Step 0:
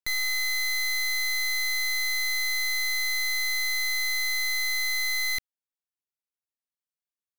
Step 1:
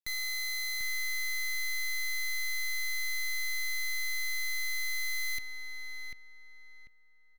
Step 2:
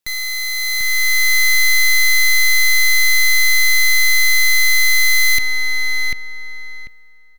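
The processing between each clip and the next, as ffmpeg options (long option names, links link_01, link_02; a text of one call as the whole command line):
ffmpeg -i in.wav -filter_complex "[0:a]equalizer=frequency=810:width=0.79:gain=-5.5,asplit=2[link_01][link_02];[link_02]adelay=743,lowpass=frequency=1900:poles=1,volume=-3.5dB,asplit=2[link_03][link_04];[link_04]adelay=743,lowpass=frequency=1900:poles=1,volume=0.34,asplit=2[link_05][link_06];[link_06]adelay=743,lowpass=frequency=1900:poles=1,volume=0.34,asplit=2[link_07][link_08];[link_08]adelay=743,lowpass=frequency=1900:poles=1,volume=0.34[link_09];[link_01][link_03][link_05][link_07][link_09]amix=inputs=5:normalize=0,volume=-6.5dB" out.wav
ffmpeg -i in.wav -filter_complex "[0:a]asplit=2[link_01][link_02];[link_02]alimiter=level_in=14dB:limit=-24dB:level=0:latency=1:release=33,volume=-14dB,volume=-0.5dB[link_03];[link_01][link_03]amix=inputs=2:normalize=0,dynaudnorm=framelen=270:gausssize=7:maxgain=10dB,volume=8.5dB" out.wav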